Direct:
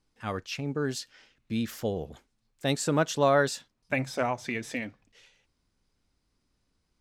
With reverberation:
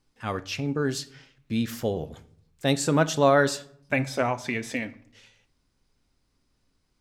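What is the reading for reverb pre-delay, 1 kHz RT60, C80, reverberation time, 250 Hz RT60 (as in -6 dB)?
7 ms, 0.60 s, 21.5 dB, 0.65 s, 0.90 s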